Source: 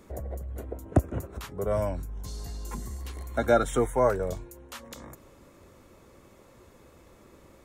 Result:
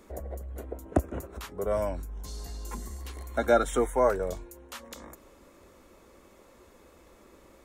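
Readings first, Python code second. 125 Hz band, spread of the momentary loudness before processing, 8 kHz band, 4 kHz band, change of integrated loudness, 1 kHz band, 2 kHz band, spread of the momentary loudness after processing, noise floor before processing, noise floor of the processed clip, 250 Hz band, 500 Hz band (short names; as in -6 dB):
-5.5 dB, 19 LU, 0.0 dB, 0.0 dB, -1.0 dB, 0.0 dB, 0.0 dB, 19 LU, -56 dBFS, -57 dBFS, -1.5 dB, -0.5 dB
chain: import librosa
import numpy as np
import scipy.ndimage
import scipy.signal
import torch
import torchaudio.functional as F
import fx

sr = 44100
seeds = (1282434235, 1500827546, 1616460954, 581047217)

y = fx.peak_eq(x, sr, hz=120.0, db=-12.0, octaves=0.87)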